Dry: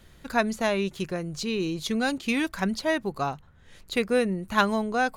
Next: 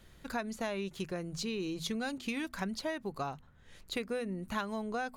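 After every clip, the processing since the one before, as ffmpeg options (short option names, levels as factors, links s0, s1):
-af "bandreject=f=82.92:t=h:w=4,bandreject=f=165.84:t=h:w=4,bandreject=f=248.76:t=h:w=4,acompressor=threshold=0.0398:ratio=6,volume=0.596"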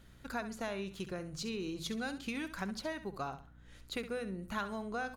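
-filter_complex "[0:a]equalizer=f=1400:w=5.4:g=4.5,aeval=exprs='val(0)+0.00141*(sin(2*PI*60*n/s)+sin(2*PI*2*60*n/s)/2+sin(2*PI*3*60*n/s)/3+sin(2*PI*4*60*n/s)/4+sin(2*PI*5*60*n/s)/5)':c=same,asplit=2[s0][s1];[s1]aecho=0:1:67|134|201:0.251|0.0678|0.0183[s2];[s0][s2]amix=inputs=2:normalize=0,volume=0.708"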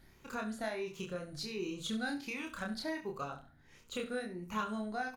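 -filter_complex "[0:a]afftfilt=real='re*pow(10,9/40*sin(2*PI*(0.77*log(max(b,1)*sr/1024/100)/log(2)-(1.4)*(pts-256)/sr)))':imag='im*pow(10,9/40*sin(2*PI*(0.77*log(max(b,1)*sr/1024/100)/log(2)-(1.4)*(pts-256)/sr)))':win_size=1024:overlap=0.75,bandreject=f=60:t=h:w=6,bandreject=f=120:t=h:w=6,bandreject=f=180:t=h:w=6,asplit=2[s0][s1];[s1]adelay=28,volume=0.75[s2];[s0][s2]amix=inputs=2:normalize=0,volume=0.708"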